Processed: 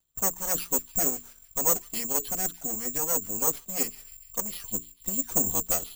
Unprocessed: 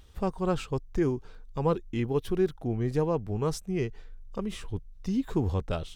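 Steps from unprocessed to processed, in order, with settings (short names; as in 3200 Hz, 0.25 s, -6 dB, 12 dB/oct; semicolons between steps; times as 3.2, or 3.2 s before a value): minimum comb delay 4.2 ms; notch 450 Hz, Q 12; gate -45 dBFS, range -19 dB; tone controls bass -3 dB, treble +9 dB; notches 60/120/180/240/300/360/420 Hz; harmonic-percussive split harmonic -9 dB; on a send: thin delay 0.148 s, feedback 53%, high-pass 3800 Hz, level -8 dB; on the sum: careless resampling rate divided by 6×, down filtered, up zero stuff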